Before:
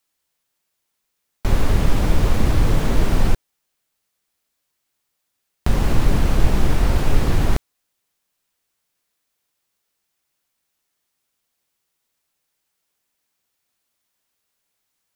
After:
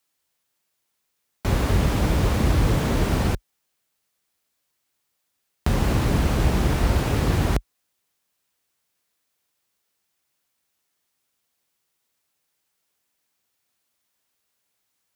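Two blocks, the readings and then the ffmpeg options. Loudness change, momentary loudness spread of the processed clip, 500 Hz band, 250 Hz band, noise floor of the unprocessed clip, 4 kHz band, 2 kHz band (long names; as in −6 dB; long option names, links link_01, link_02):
−1.0 dB, 5 LU, 0.0 dB, 0.0 dB, −76 dBFS, 0.0 dB, 0.0 dB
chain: -af "highpass=frequency=45:width=0.5412,highpass=frequency=45:width=1.3066"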